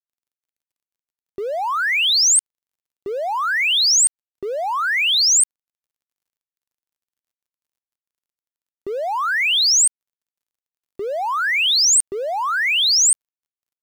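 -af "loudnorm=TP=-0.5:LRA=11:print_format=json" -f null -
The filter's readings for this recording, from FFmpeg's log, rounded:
"input_i" : "-15.8",
"input_tp" : "-9.9",
"input_lra" : "3.0",
"input_thresh" : "-26.5",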